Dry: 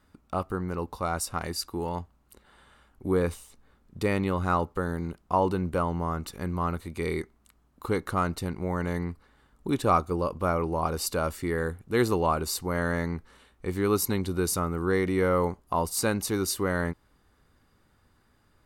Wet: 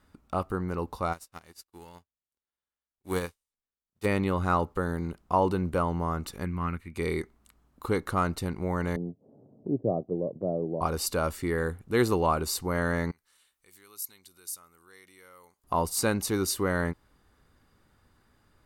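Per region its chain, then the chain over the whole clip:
1.12–4.04 spectral whitening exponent 0.6 + upward expander 2.5:1, over -46 dBFS
6.45–6.96 EQ curve 240 Hz 0 dB, 620 Hz -11 dB, 2400 Hz +7 dB, 3500 Hz -8 dB + upward expander, over -41 dBFS
8.96–10.81 G.711 law mismatch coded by A + Chebyshev band-pass 110–670 Hz, order 4 + upward compressor, threshold -37 dBFS
13.11–15.64 compressor 1.5:1, threshold -48 dBFS + pre-emphasis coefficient 0.97
whole clip: dry

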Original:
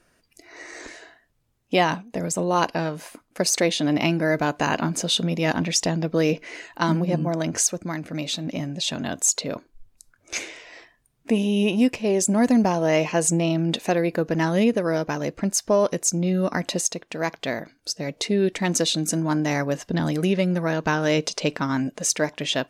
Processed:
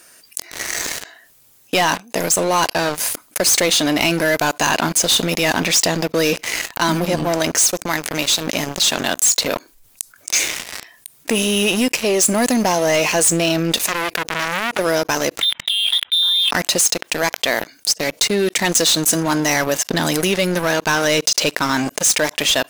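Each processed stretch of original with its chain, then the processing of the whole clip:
13.84–14.79 compressor, threshold -21 dBFS + core saturation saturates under 2100 Hz
15.41–16.51 negative-ratio compressor -30 dBFS + inverted band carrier 3800 Hz
whole clip: RIAA curve recording; sample leveller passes 5; fast leveller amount 50%; gain -13.5 dB

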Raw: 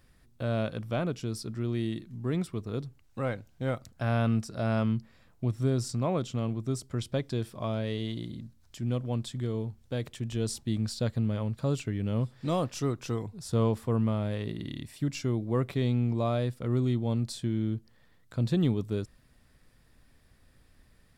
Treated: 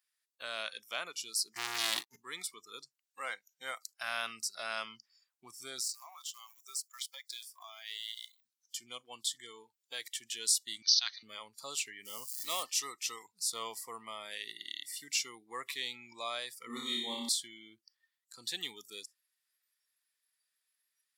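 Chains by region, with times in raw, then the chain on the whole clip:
1.55–2.16 expander -36 dBFS + low shelf 96 Hz +11.5 dB + sample leveller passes 5
5.8–8.45 G.711 law mismatch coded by A + HPF 550 Hz 24 dB/oct + compressor 3:1, threshold -41 dBFS
10.82–11.23 brick-wall FIR band-pass 610–6500 Hz + high shelf 3300 Hz +10 dB
12.05–12.63 switching spikes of -36 dBFS + mismatched tape noise reduction decoder only
16.67–17.29 small resonant body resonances 240/3700 Hz, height 16 dB, ringing for 50 ms + flutter echo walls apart 5.1 m, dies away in 0.97 s
whole clip: spectral noise reduction 21 dB; HPF 1300 Hz 12 dB/oct; high shelf 2800 Hz +11.5 dB

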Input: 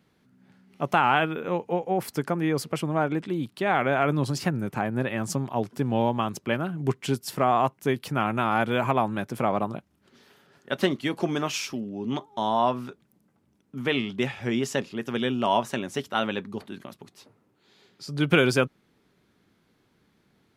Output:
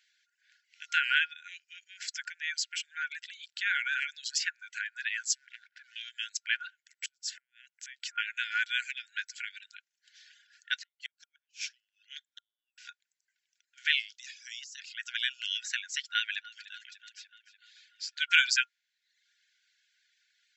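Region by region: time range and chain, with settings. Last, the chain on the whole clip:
5.35–5.96 LPF 1500 Hz + negative-ratio compressor -28 dBFS, ratio -0.5 + sample leveller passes 1
6.7–8.18 dynamic EQ 3600 Hz, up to -3 dB, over -44 dBFS, Q 1.2 + compressor, threshold -34 dBFS + flipped gate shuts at -26 dBFS, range -24 dB
10.79–12.78 HPF 920 Hz 6 dB/oct + high shelf 2400 Hz -9.5 dB + flipped gate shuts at -24 dBFS, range -39 dB
14.12–14.8 band-pass 5800 Hz, Q 2.1 + negative-ratio compressor -48 dBFS + mismatched tape noise reduction encoder only
16.05–18.22 high shelf 6900 Hz -5.5 dB + echo with dull and thin repeats by turns 0.147 s, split 1200 Hz, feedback 78%, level -13 dB
whole clip: FFT band-pass 1400–7800 Hz; reverb removal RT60 0.7 s; tilt +2.5 dB/oct

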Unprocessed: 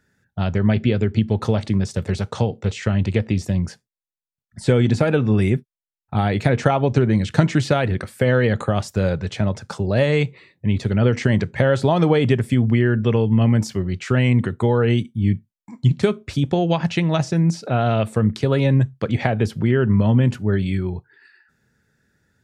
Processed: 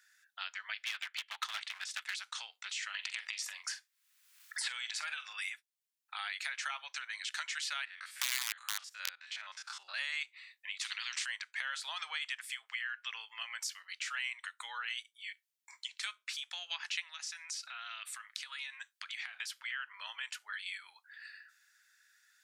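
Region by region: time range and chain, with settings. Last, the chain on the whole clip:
0.86–2.16 band shelf 1500 Hz +8.5 dB 2.9 oct + transient shaper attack +6 dB, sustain -5 dB + hard clip -15.5 dBFS
2.94–5.33 transient shaper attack -7 dB, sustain +6 dB + doubler 44 ms -12 dB + three-band squash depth 100%
7.85–9.94 stepped spectrum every 50 ms + high shelf 6900 Hz -12 dB + wrapped overs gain 11 dB
10.81–11.26 band-pass 2100 Hz, Q 0.77 + spectral compressor 4:1
17.07–19.34 HPF 790 Hz + compressor 3:1, threshold -34 dBFS
whole clip: Bessel high-pass 2100 Hz, order 6; compressor 2:1, threshold -50 dBFS; gain +5.5 dB

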